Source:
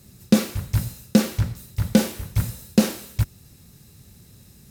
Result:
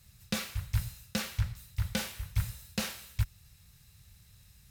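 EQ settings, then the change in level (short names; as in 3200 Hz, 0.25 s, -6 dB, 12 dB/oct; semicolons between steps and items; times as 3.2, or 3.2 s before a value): tone controls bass +3 dB, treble -9 dB; passive tone stack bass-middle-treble 10-0-10; 0.0 dB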